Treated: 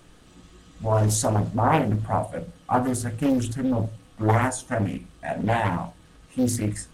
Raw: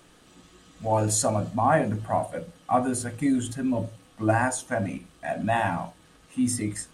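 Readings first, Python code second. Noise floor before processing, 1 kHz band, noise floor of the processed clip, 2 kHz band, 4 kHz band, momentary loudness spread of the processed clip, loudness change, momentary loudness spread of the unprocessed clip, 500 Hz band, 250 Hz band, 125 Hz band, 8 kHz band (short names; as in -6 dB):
-56 dBFS, +0.5 dB, -53 dBFS, -1.0 dB, +1.5 dB, 12 LU, +1.5 dB, 12 LU, +0.5 dB, +1.5 dB, +6.0 dB, -1.0 dB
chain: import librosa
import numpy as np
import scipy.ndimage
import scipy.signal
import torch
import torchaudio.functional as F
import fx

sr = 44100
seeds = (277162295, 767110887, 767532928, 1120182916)

y = fx.low_shelf(x, sr, hz=130.0, db=11.5)
y = fx.doppler_dist(y, sr, depth_ms=0.8)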